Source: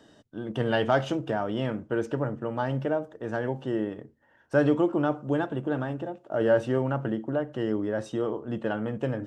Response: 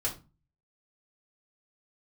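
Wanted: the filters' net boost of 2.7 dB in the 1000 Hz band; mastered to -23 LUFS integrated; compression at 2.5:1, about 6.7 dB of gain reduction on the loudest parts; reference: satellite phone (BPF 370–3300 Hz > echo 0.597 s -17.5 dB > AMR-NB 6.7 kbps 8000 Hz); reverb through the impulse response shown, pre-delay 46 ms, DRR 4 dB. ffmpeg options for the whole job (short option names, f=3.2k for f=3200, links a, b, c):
-filter_complex "[0:a]equalizer=f=1k:t=o:g=4,acompressor=threshold=-26dB:ratio=2.5,asplit=2[a][b];[1:a]atrim=start_sample=2205,adelay=46[c];[b][c]afir=irnorm=-1:irlink=0,volume=-9dB[d];[a][d]amix=inputs=2:normalize=0,highpass=370,lowpass=3.3k,aecho=1:1:597:0.133,volume=10dB" -ar 8000 -c:a libopencore_amrnb -b:a 6700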